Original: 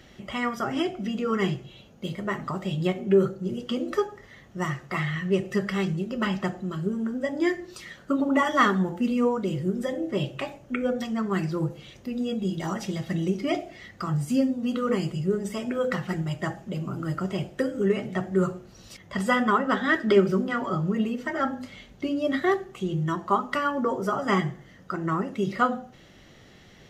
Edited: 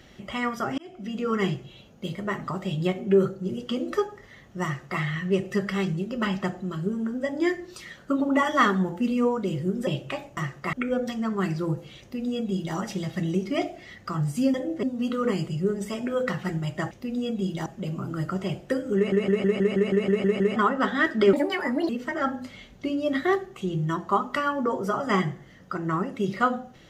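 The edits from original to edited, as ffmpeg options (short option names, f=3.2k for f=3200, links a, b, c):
-filter_complex "[0:a]asplit=21[a][b][c][d][e][f][g][h][i][j][k][l][m][n][o][p][q][r][s][t][u];[a]atrim=end=0.78,asetpts=PTS-STARTPTS,afade=t=out:st=0.776:d=0.004:c=hsin[v];[b]atrim=start=0.78:end=9.872,asetpts=PTS-STARTPTS,afade=t=in:d=0.47[w];[c]atrim=start=10.158:end=10.662[x];[d]atrim=start=4.638:end=5.002[y];[e]atrim=start=10.658:end=14.472[z];[f]atrim=start=9.868:end=10.162[aa];[g]atrim=start=14.468:end=16.552[ab];[h]atrim=start=11.938:end=12.692[ac];[i]atrim=start=16.548:end=18.012[ad];[j]atrim=start=17.848:end=18.012[ae];[k]atrim=start=17.848:end=18.012[af];[l]atrim=start=17.848:end=18.012[ag];[m]atrim=start=17.848:end=18.012[ah];[n]atrim=start=17.848:end=18.012[ai];[o]atrim=start=17.848:end=18.012[aj];[p]atrim=start=17.848:end=18.012[ak];[q]atrim=start=17.848:end=18.012[al];[r]atrim=start=17.848:end=18.012[am];[s]atrim=start=19.448:end=20.224[an];[t]atrim=start=20.22:end=21.08,asetpts=PTS-STARTPTS,asetrate=67473,aresample=44100,atrim=end_sample=24788,asetpts=PTS-STARTPTS[ao];[u]atrim=start=21.076[ap];[v][w]concat=n=2:v=0:a=1[aq];[aq][x]acrossfade=d=0.004:c1=hsin:c2=hsin[ar];[ar][y]acrossfade=d=0.004:c1=hsin:c2=hsin[as];[as][z]acrossfade=d=0.004:c1=hsin:c2=hsin[at];[at][aa]acrossfade=d=0.004:c1=hsin:c2=hsin[au];[au][ab]acrossfade=d=0.004:c1=hsin:c2=hsin[av];[av][ac]acrossfade=d=0.004:c1=hsin:c2=hsin[aw];[aw][ad]acrossfade=d=0.004:c1=hsin:c2=hsin[ax];[ax][ae]acrossfade=d=0.004:c1=hsin:c2=hsin[ay];[ay][af]acrossfade=d=0.004:c1=hsin:c2=hsin[az];[az][ag]acrossfade=d=0.004:c1=hsin:c2=hsin[ba];[ba][ah]acrossfade=d=0.004:c1=hsin:c2=hsin[bb];[bb][ai]acrossfade=d=0.004:c1=hsin:c2=hsin[bc];[bc][aj]acrossfade=d=0.004:c1=hsin:c2=hsin[bd];[bd][ak]acrossfade=d=0.004:c1=hsin:c2=hsin[be];[be][al]acrossfade=d=0.004:c1=hsin:c2=hsin[bf];[bf][am]acrossfade=d=0.004:c1=hsin:c2=hsin[bg];[bg][an]acrossfade=d=0.004:c1=hsin:c2=hsin[bh];[bh][ao]acrossfade=d=0.004:c1=hsin:c2=hsin[bi];[bi][ap]acrossfade=d=0.004:c1=hsin:c2=hsin"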